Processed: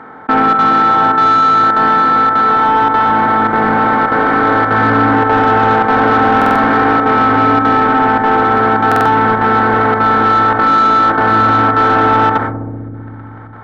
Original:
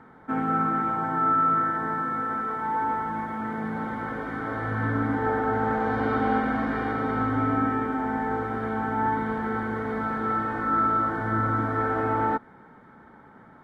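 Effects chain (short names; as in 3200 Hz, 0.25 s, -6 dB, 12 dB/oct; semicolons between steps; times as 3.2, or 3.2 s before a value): per-bin compression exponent 0.6; gate -32 dBFS, range -35 dB; chopper 1.7 Hz, depth 65%, duty 90%; overdrive pedal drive 17 dB, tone 1700 Hz, clips at -8 dBFS; darkening echo 64 ms, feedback 84%, low-pass 860 Hz, level -13.5 dB; stuck buffer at 6.37/8.87, samples 2048, times 3; fast leveller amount 50%; gain +6.5 dB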